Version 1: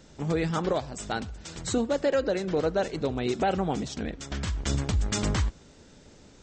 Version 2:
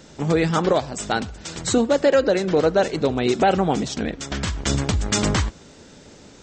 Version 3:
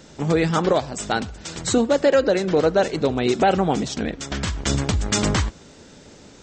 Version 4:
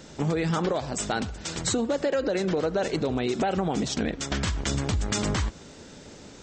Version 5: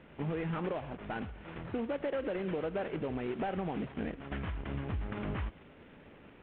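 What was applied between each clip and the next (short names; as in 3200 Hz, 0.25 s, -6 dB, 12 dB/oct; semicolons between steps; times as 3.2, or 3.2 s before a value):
low shelf 77 Hz -10 dB; gain +8.5 dB
nothing audible
limiter -14 dBFS, peak gain reduction 6 dB; compressor, threshold -22 dBFS, peak gain reduction 5 dB
CVSD 16 kbps; gain -8.5 dB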